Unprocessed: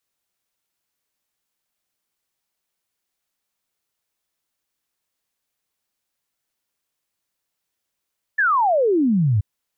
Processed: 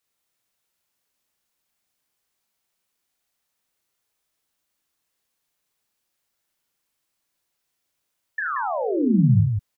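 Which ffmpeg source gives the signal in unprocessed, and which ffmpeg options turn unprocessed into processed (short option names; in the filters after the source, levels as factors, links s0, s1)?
-f lavfi -i "aevalsrc='0.188*clip(min(t,1.03-t)/0.01,0,1)*sin(2*PI*1800*1.03/log(95/1800)*(exp(log(95/1800)*t/1.03)-1))':d=1.03:s=44100"
-filter_complex "[0:a]acrossover=split=240[s0][s1];[s1]acompressor=threshold=0.0398:ratio=6[s2];[s0][s2]amix=inputs=2:normalize=0,aecho=1:1:37.9|75.8|180.8:0.562|0.355|0.562"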